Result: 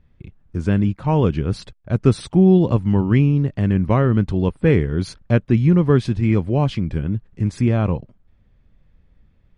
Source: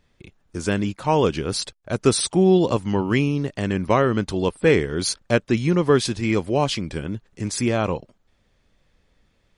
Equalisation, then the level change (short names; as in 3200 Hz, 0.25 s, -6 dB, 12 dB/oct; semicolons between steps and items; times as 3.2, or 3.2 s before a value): tone controls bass +13 dB, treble -14 dB; -3.0 dB